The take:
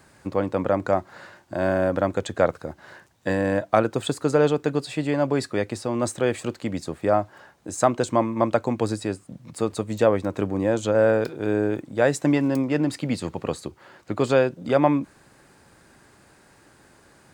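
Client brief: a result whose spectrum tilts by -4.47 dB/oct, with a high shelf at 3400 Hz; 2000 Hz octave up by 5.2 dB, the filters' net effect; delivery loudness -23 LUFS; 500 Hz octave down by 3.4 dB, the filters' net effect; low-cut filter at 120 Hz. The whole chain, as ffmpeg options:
-af "highpass=120,equalizer=f=500:t=o:g=-4.5,equalizer=f=2k:t=o:g=5.5,highshelf=f=3.4k:g=6.5,volume=2dB"

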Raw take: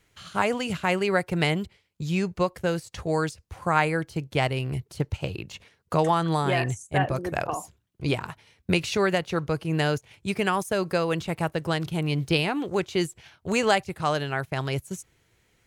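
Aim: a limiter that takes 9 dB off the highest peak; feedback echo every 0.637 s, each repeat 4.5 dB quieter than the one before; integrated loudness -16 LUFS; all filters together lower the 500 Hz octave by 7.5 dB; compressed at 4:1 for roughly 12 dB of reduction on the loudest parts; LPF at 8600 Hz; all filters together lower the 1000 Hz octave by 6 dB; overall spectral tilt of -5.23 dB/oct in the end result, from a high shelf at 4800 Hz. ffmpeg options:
-af "lowpass=8.6k,equalizer=f=500:t=o:g=-8.5,equalizer=f=1k:t=o:g=-4.5,highshelf=f=4.8k:g=-8,acompressor=threshold=-36dB:ratio=4,alimiter=level_in=7.5dB:limit=-24dB:level=0:latency=1,volume=-7.5dB,aecho=1:1:637|1274|1911|2548|3185|3822|4459|5096|5733:0.596|0.357|0.214|0.129|0.0772|0.0463|0.0278|0.0167|0.01,volume=25dB"

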